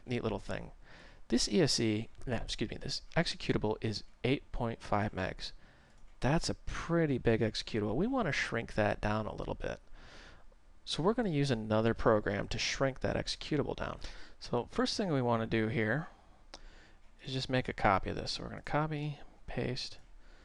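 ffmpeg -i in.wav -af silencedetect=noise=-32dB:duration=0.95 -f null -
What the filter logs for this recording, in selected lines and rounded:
silence_start: 9.73
silence_end: 10.90 | silence_duration: 1.17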